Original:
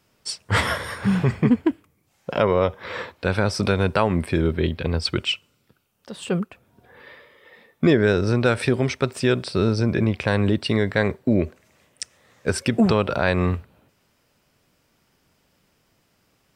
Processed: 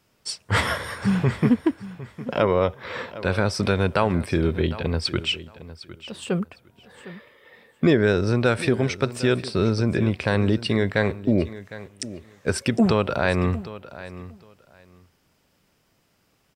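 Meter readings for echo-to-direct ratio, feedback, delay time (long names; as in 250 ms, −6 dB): −16.0 dB, 18%, 757 ms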